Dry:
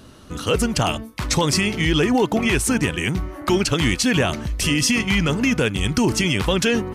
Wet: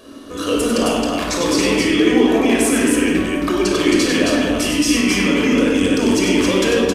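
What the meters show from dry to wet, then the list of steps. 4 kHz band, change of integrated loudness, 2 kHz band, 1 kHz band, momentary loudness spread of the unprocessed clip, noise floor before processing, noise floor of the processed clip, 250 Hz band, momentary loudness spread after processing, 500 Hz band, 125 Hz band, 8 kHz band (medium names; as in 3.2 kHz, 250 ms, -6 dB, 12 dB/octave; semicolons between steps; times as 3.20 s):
+2.0 dB, +4.0 dB, +2.0 dB, +2.0 dB, 5 LU, -44 dBFS, -29 dBFS, +6.0 dB, 5 LU, +6.0 dB, -6.0 dB, +2.5 dB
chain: resonant low shelf 200 Hz -13 dB, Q 3; peak limiter -14.5 dBFS, peak gain reduction 9.5 dB; loudspeakers at several distances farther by 33 m -6 dB, 92 m -3 dB; simulated room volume 3200 m³, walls furnished, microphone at 5.7 m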